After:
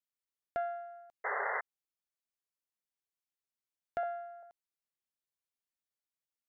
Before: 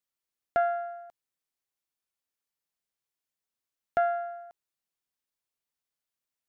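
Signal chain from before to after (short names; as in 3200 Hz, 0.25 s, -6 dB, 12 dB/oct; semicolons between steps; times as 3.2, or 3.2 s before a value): 4.03–4.43 steep high-pass 290 Hz; dynamic EQ 1200 Hz, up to -4 dB, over -41 dBFS, Q 1.3; 1.24–1.61 painted sound noise 390–2100 Hz -26 dBFS; gain -8.5 dB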